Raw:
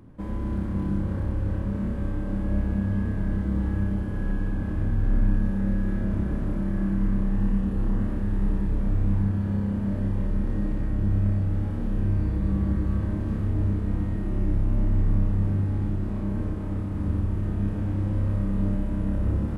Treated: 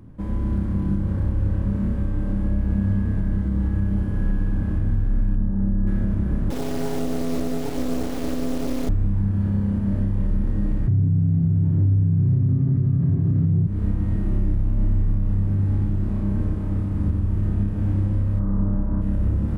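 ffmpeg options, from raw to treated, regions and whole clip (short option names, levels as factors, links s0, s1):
-filter_complex "[0:a]asettb=1/sr,asplit=3[s0][s1][s2];[s0]atrim=end=5.354[s3];[s1]atrim=start=5.35:end=5.87,asetpts=PTS-STARTPTS,afade=t=in:d=0.004:c=qsin,afade=t=out:st=0.516:d=0.004:c=qsin,lowpass=1100,bandreject=f=500:w=6.4[s4];[s2]atrim=start=5.866[s5];[s3][s4]acrossfade=d=0.004:c1=hsin:c2=qsin[s6];[s6][s5]acrossfade=d=0.004:c1=qsin:c2=hsin,asettb=1/sr,asplit=3[s7][s8][s9];[s7]atrim=end=6.504[s10];[s8]atrim=start=6.5:end=8.89,asetpts=PTS-STARTPTS,afade=t=in:d=0.004:c=qsin,afade=t=out:st=2.386:d=0.004:c=qsin,afreqshift=220,acrusher=bits=3:dc=4:mix=0:aa=0.000001[s11];[s9]atrim=start=8.886[s12];[s10][s11]acrossfade=d=0.004:c1=hsin:c2=qsin[s13];[s13][s12]acrossfade=d=0.004:c1=qsin:c2=hsin,asettb=1/sr,asplit=3[s14][s15][s16];[s14]atrim=end=10.874[s17];[s15]atrim=start=10.87:end=13.67,asetpts=PTS-STARTPTS,afade=t=in:d=0.004:c=qsin,afade=t=out:st=2.796:d=0.004:c=qsin,aemphasis=mode=reproduction:type=bsi,afreqshift=66,highpass=50[s18];[s16]atrim=start=13.666[s19];[s17][s18]acrossfade=d=0.004:c1=hsin:c2=qsin[s20];[s20][s19]acrossfade=d=0.004:c1=qsin:c2=hsin,asettb=1/sr,asplit=3[s21][s22][s23];[s21]atrim=end=18.394[s24];[s22]atrim=start=18.39:end=19.02,asetpts=PTS-STARTPTS,afade=t=in:d=0.004:c=qsin,afade=t=out:st=0.626:d=0.004:c=qsin,lowpass=f=1200:t=q:w=1.9,aemphasis=mode=reproduction:type=50fm[s25];[s23]atrim=start=19.016[s26];[s24][s25]acrossfade=d=0.004:c1=hsin:c2=qsin[s27];[s27][s26]acrossfade=d=0.004:c1=qsin:c2=hsin,bass=f=250:g=6,treble=f=4000:g=1,alimiter=limit=0.224:level=0:latency=1:release=186"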